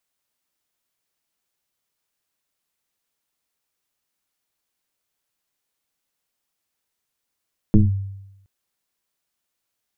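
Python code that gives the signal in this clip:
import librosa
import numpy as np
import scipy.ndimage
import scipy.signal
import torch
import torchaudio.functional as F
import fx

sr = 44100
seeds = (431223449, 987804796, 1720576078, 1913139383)

y = fx.fm2(sr, length_s=0.72, level_db=-7, carrier_hz=97.8, ratio=1.12, index=1.9, index_s=0.17, decay_s=0.91, shape='linear')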